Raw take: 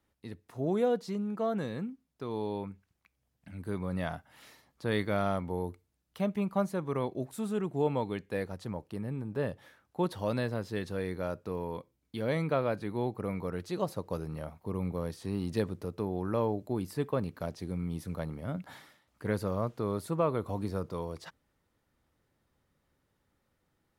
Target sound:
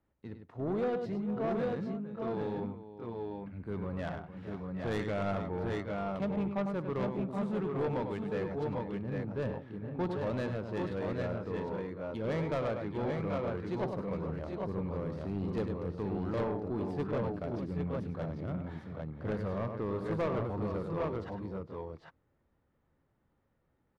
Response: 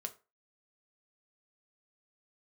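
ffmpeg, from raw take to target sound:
-filter_complex "[0:a]asplit=2[a][b];[b]asetrate=33038,aresample=44100,atempo=1.33484,volume=-16dB[c];[a][c]amix=inputs=2:normalize=0,aecho=1:1:62|101|458|775|801:0.141|0.398|0.2|0.335|0.596,adynamicsmooth=sensitivity=5:basefreq=2.1k,asoftclip=type=tanh:threshold=-25.5dB,volume=-1dB"

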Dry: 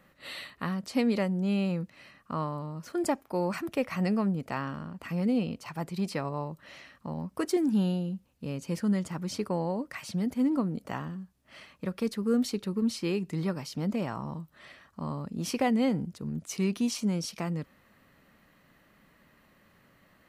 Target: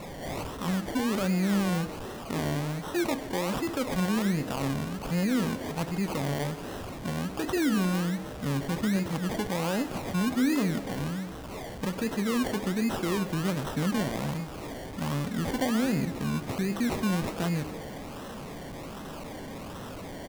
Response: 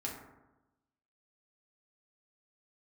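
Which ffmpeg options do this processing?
-filter_complex "[0:a]aeval=exprs='val(0)+0.5*0.0141*sgn(val(0))':c=same,alimiter=limit=-23.5dB:level=0:latency=1:release=23,acrusher=samples=27:mix=1:aa=0.000001:lfo=1:lforange=16.2:lforate=1.3,asplit=6[a][b][c][d][e][f];[b]adelay=126,afreqshift=140,volume=-17dB[g];[c]adelay=252,afreqshift=280,volume=-21.9dB[h];[d]adelay=378,afreqshift=420,volume=-26.8dB[i];[e]adelay=504,afreqshift=560,volume=-31.6dB[j];[f]adelay=630,afreqshift=700,volume=-36.5dB[k];[a][g][h][i][j][k]amix=inputs=6:normalize=0,asplit=2[l][m];[1:a]atrim=start_sample=2205[n];[m][n]afir=irnorm=-1:irlink=0,volume=-12.5dB[o];[l][o]amix=inputs=2:normalize=0,volume=1dB"

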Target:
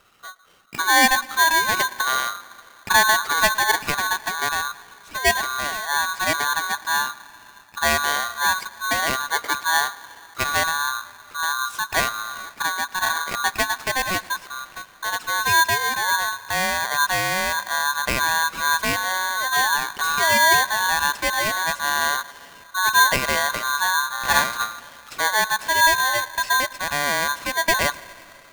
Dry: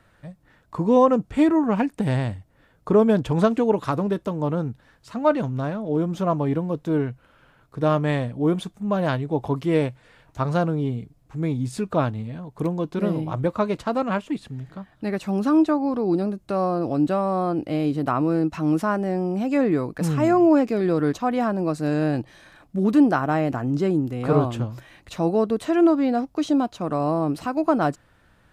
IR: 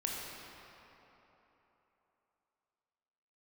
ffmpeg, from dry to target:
-filter_complex "[0:a]asplit=2[a][b];[1:a]atrim=start_sample=2205,adelay=112[c];[b][c]afir=irnorm=-1:irlink=0,volume=-21.5dB[d];[a][d]amix=inputs=2:normalize=0,aeval=exprs='val(0)*sgn(sin(2*PI*1300*n/s))':c=same"

